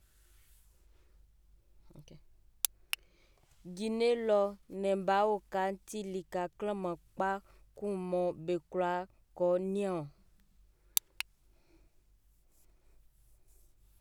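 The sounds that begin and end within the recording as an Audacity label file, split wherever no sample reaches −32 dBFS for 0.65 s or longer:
2.650000	2.940000	sound
3.800000	10.000000	sound
10.970000	11.210000	sound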